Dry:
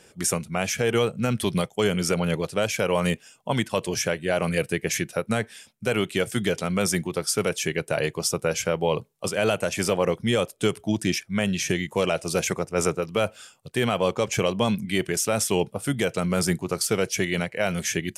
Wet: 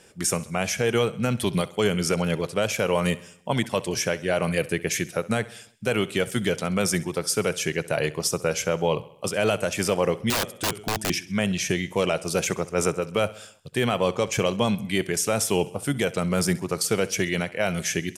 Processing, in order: wow and flutter 19 cents; feedback delay 66 ms, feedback 55%, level -19 dB; 10.30–11.10 s: integer overflow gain 18.5 dB

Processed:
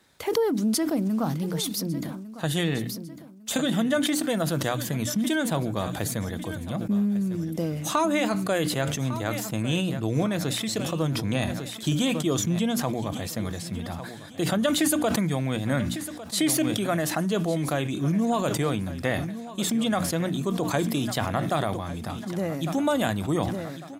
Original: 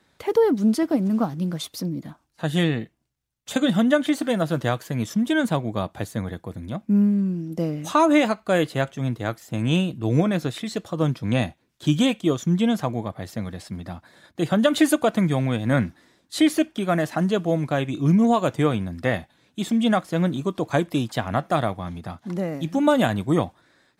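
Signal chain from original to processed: treble shelf 5.4 kHz +9.5 dB; hum notches 60/120/180/240/300 Hz; compression 2:1, threshold -26 dBFS, peak gain reduction 7.5 dB; feedback delay 1152 ms, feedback 37%, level -15.5 dB; decay stretcher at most 37 dB/s

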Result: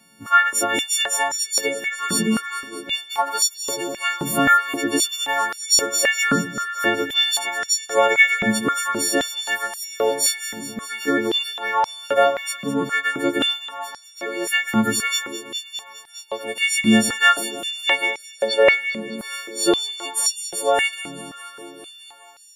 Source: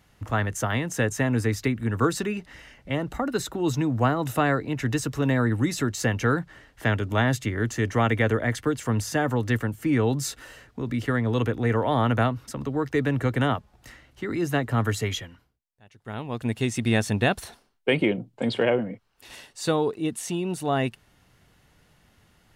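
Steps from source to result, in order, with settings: partials quantised in pitch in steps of 4 st; echo whose repeats swap between lows and highs 102 ms, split 1.5 kHz, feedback 87%, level -12.5 dB; step-sequenced high-pass 3.8 Hz 210–5400 Hz

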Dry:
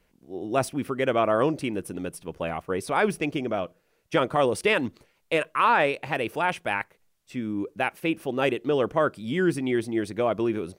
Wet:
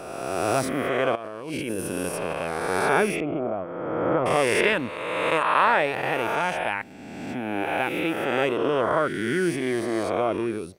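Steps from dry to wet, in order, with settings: reverse spectral sustain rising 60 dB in 1.89 s; 1.15–2.33 s: compressor with a negative ratio -28 dBFS, ratio -1; 3.20–4.26 s: low-pass 1.1 kHz 12 dB/octave; trim -3 dB

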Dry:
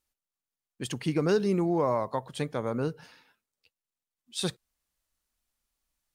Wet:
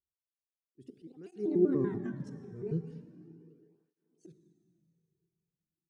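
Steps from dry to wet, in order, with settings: pitch shift switched off and on +8.5 st, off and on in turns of 101 ms; gate -52 dBFS, range -15 dB; slow attack 521 ms; FFT filter 310 Hz 0 dB, 680 Hz -28 dB, 1.6 kHz -17 dB; plate-style reverb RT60 2.9 s, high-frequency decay 0.85×, DRR 8.5 dB; resampled via 22.05 kHz; bass shelf 360 Hz +7 dB; small resonant body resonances 390/720 Hz, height 11 dB, ringing for 35 ms; speed mistake 24 fps film run at 25 fps; cancelling through-zero flanger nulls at 0.38 Hz, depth 3.8 ms

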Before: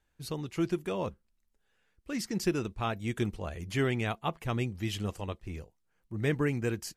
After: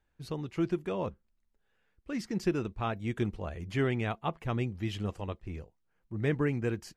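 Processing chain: low-pass 2.5 kHz 6 dB/octave

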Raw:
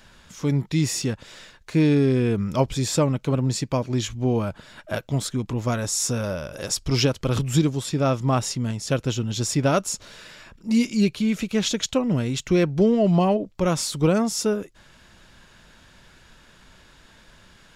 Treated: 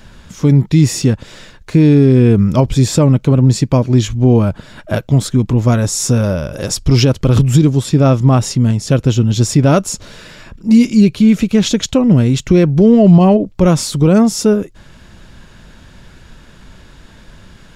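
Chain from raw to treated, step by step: bass shelf 430 Hz +9.5 dB; peak limiter -7 dBFS, peak gain reduction 6 dB; trim +6 dB

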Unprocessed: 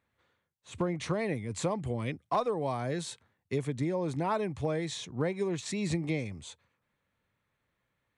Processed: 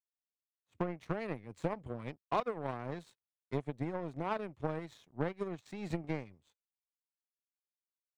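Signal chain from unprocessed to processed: power-law waveshaper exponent 2; treble shelf 4.1 kHz -11.5 dB

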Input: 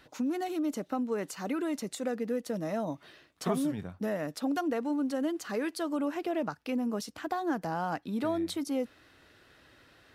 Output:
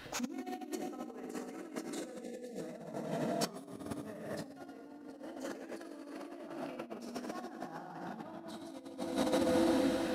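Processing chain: plate-style reverb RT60 4.6 s, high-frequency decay 0.9×, DRR -4.5 dB; time-frequency box 2.24–2.59 s, 810–1700 Hz -26 dB; compressor with a negative ratio -36 dBFS, ratio -0.5; trim -2 dB

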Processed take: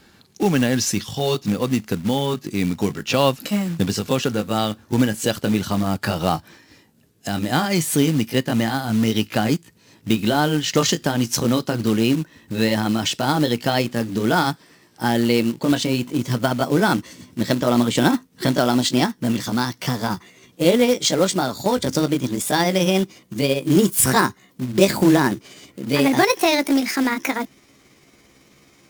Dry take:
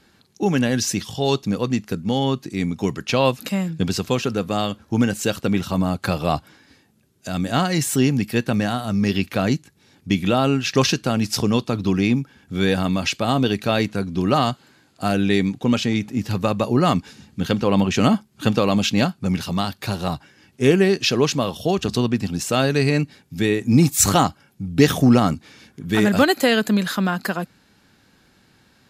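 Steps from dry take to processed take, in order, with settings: pitch bend over the whole clip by +5.5 st starting unshifted; in parallel at -1 dB: compression 6:1, threshold -26 dBFS, peak gain reduction 16 dB; on the sum: short-mantissa float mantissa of 2-bit; trim -1 dB

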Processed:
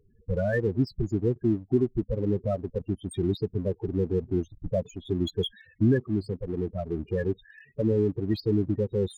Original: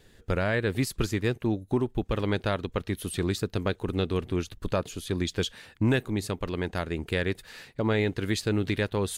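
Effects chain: peaking EQ 11 kHz -10.5 dB 0.57 oct; loudest bins only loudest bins 8; in parallel at -4 dB: crossover distortion -43.5 dBFS; on the sum: bass shelf 97 Hz -5 dB

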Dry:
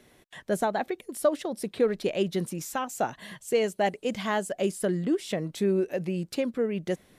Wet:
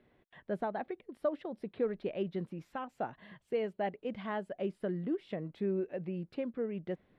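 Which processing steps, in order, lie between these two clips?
distance through air 420 m; trim -7.5 dB

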